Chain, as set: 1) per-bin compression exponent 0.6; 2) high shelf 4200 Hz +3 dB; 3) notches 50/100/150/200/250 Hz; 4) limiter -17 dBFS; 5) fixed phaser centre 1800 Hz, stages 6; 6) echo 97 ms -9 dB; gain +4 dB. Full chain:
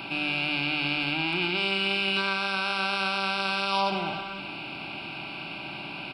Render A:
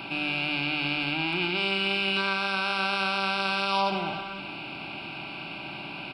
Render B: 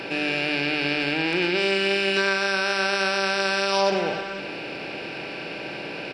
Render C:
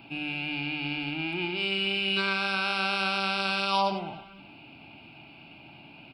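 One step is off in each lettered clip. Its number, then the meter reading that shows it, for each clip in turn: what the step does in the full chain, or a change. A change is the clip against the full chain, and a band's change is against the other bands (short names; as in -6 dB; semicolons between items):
2, 8 kHz band -1.5 dB; 5, 8 kHz band +10.0 dB; 1, crest factor change +2.0 dB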